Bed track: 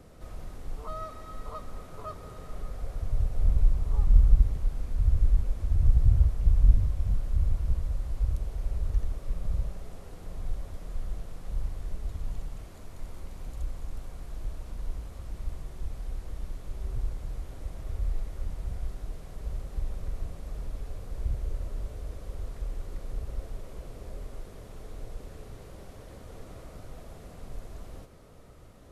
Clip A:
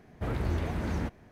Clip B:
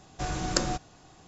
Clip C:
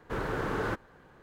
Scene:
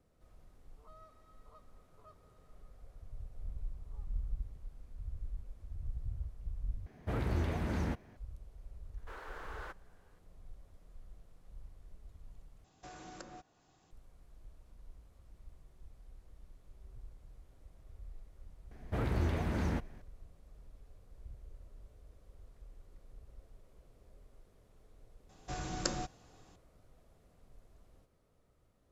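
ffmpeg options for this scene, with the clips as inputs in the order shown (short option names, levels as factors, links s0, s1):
-filter_complex "[1:a]asplit=2[s0][s1];[2:a]asplit=2[s2][s3];[0:a]volume=0.106[s4];[3:a]highpass=610[s5];[s2]acrossover=split=220|2600[s6][s7][s8];[s6]acompressor=threshold=0.00562:ratio=6[s9];[s7]acompressor=threshold=0.02:ratio=5[s10];[s8]acompressor=threshold=0.00398:ratio=2.5[s11];[s9][s10][s11]amix=inputs=3:normalize=0[s12];[s4]asplit=3[s13][s14][s15];[s13]atrim=end=6.864[s16];[s0]atrim=end=1.31,asetpts=PTS-STARTPTS,volume=0.708[s17];[s14]atrim=start=8.166:end=12.644[s18];[s12]atrim=end=1.27,asetpts=PTS-STARTPTS,volume=0.2[s19];[s15]atrim=start=13.906[s20];[s5]atrim=end=1.22,asetpts=PTS-STARTPTS,volume=0.251,afade=t=in:d=0.004:c=hsin,afade=t=out:st=1.216:d=0.004:c=hsin,adelay=8970[s21];[s1]atrim=end=1.31,asetpts=PTS-STARTPTS,volume=0.794,afade=t=in:d=0.004:c=hsin,afade=t=out:st=1.306:d=0.004:c=hsin,adelay=18710[s22];[s3]atrim=end=1.27,asetpts=PTS-STARTPTS,volume=0.376,afade=t=in:d=0.004:c=hsin,afade=t=out:st=1.266:d=0.004:c=hsin,adelay=25290[s23];[s16][s17]acrossfade=d=0.004:c1=hsin:c2=hsin[s24];[s24][s18]acrossfade=d=0.004:c1=hsin:c2=hsin[s25];[s25][s19]acrossfade=d=0.004:c1=hsin:c2=hsin[s26];[s26][s20]acrossfade=d=0.004:c1=hsin:c2=hsin[s27];[s27][s21][s22][s23]amix=inputs=4:normalize=0"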